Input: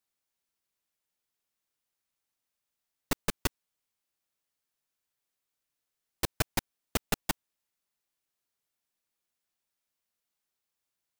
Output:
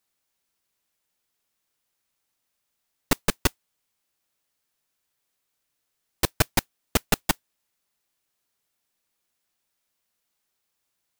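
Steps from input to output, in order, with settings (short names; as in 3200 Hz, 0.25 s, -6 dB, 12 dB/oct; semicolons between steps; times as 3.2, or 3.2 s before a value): modulation noise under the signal 24 dB; gain +7.5 dB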